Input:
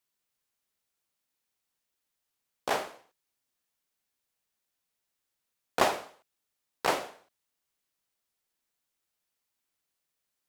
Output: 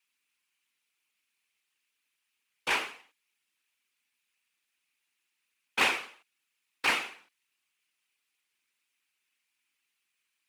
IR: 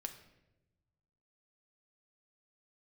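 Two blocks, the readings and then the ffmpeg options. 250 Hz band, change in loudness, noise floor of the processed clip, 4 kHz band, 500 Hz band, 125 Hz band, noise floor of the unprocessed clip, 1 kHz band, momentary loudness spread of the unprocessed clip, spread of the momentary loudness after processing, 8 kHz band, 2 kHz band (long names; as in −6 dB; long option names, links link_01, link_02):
−4.0 dB, +2.0 dB, −82 dBFS, +5.0 dB, −9.0 dB, −6.5 dB, −84 dBFS, −3.5 dB, 14 LU, 15 LU, 0.0 dB, +7.0 dB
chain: -filter_complex "[0:a]afftfilt=real='hypot(re,im)*cos(2*PI*random(0))':imag='hypot(re,im)*sin(2*PI*random(1))':win_size=512:overlap=0.75,equalizer=frequency=250:width_type=o:width=0.67:gain=4,equalizer=frequency=630:width_type=o:width=0.67:gain=-10,equalizer=frequency=2500:width_type=o:width=0.67:gain=12,equalizer=frequency=10000:width_type=o:width=0.67:gain=5,asplit=2[link_01][link_02];[link_02]highpass=frequency=720:poles=1,volume=14dB,asoftclip=type=tanh:threshold=-14.5dB[link_03];[link_01][link_03]amix=inputs=2:normalize=0,lowpass=frequency=4900:poles=1,volume=-6dB"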